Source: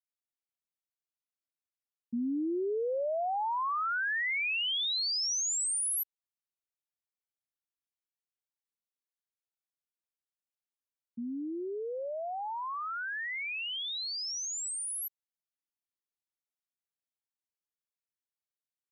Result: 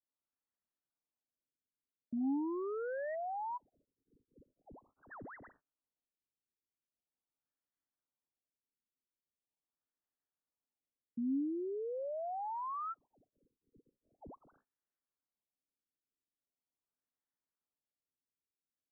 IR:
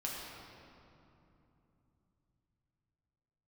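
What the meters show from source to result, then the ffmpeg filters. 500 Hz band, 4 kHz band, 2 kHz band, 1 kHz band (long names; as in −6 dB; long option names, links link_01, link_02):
−6.0 dB, below −40 dB, −21.5 dB, −7.5 dB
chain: -af "aresample=16000,asoftclip=type=hard:threshold=-39.5dB,aresample=44100,equalizer=frequency=270:width=3.6:gain=7,afftfilt=real='re*lt(b*sr/1024,480*pow(2100/480,0.5+0.5*sin(2*PI*0.42*pts/sr)))':imag='im*lt(b*sr/1024,480*pow(2100/480,0.5+0.5*sin(2*PI*0.42*pts/sr)))':win_size=1024:overlap=0.75,volume=1dB"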